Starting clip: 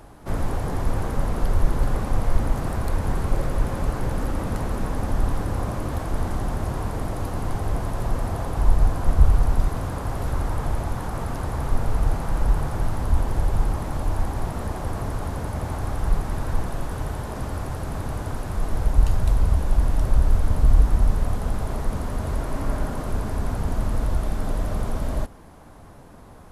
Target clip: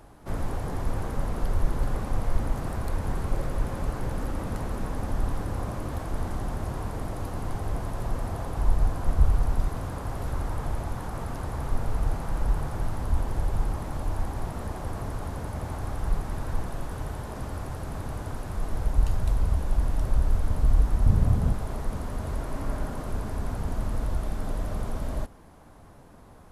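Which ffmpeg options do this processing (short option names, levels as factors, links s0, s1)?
-filter_complex "[0:a]asettb=1/sr,asplit=3[s0][s1][s2];[s0]atrim=end=21.064[s3];[s1]atrim=start=21.06:end=21.53,asetpts=PTS-STARTPTS,afade=t=in:d=0.004:c=qsin,afade=t=out:st=0.466:d=0.004:c=qsin,equalizer=f=120:w=0.59:g=13[s4];[s2]atrim=start=21.526[s5];[s3][s4]acrossfade=d=0.004:c1=hsin:c2=qsin[s6];[s6][s5]acrossfade=d=0.004:c1=qsin:c2=hsin,volume=0.562"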